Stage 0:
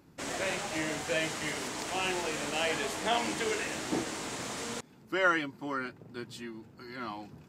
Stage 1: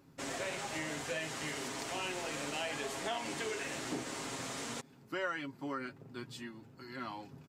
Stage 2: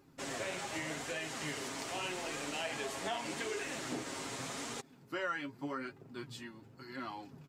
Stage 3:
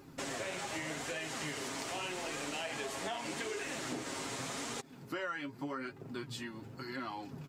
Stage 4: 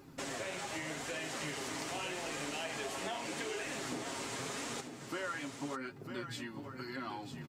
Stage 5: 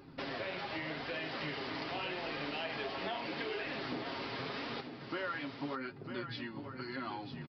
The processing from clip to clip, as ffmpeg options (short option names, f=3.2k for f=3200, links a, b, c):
-af "aecho=1:1:7.4:0.45,acompressor=threshold=-32dB:ratio=3,volume=-3.5dB"
-af "flanger=delay=2.4:depth=8.6:regen=50:speed=0.84:shape=sinusoidal,volume=3.5dB"
-af "acompressor=threshold=-50dB:ratio=2.5,volume=9dB"
-af "aecho=1:1:949:0.398,volume=-1dB"
-af "aresample=11025,aresample=44100,volume=1dB"